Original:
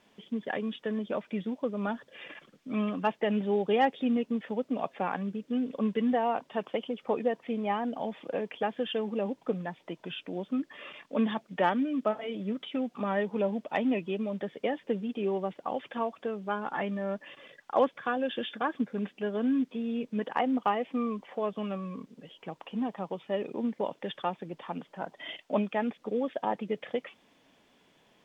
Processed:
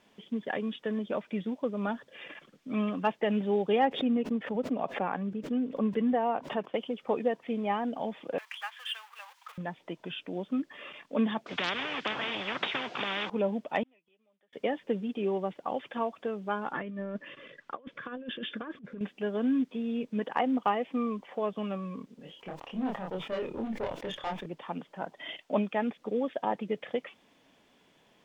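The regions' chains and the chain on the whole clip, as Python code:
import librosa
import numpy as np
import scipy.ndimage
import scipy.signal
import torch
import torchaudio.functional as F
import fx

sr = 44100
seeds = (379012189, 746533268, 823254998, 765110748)

y = fx.chain(x, sr, fx.high_shelf(hz=3000.0, db=-10.5),
    fx.pre_swell(db_per_s=130.0), at=(3.79, 6.74))
y = fx.chain(y, sr, fx.law_mismatch(coded='mu'),
    fx.steep_highpass(hz=1000.0, slope=36), at=(8.38, 9.58))
y = fx.chain(y, sr, fx.highpass(hz=200.0, slope=12),
    fx.air_absorb(metres=170.0),
    fx.spectral_comp(ratio=10.0), at=(11.46, 13.3))
y = fx.chain(y, sr, fx.highpass(hz=1300.0, slope=6),
    fx.gate_flip(shuts_db=-41.0, range_db=-28), at=(13.83, 14.53))
y = fx.chain(y, sr, fx.lowpass(hz=1900.0, slope=6),
    fx.peak_eq(hz=790.0, db=-14.0, octaves=0.47),
    fx.over_compress(threshold_db=-37.0, ratio=-0.5), at=(16.73, 19.01))
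y = fx.chain(y, sr, fx.tube_stage(drive_db=29.0, bias=0.4),
    fx.doubler(ms=27.0, db=-2.5),
    fx.sustainer(db_per_s=97.0), at=(22.17, 24.46))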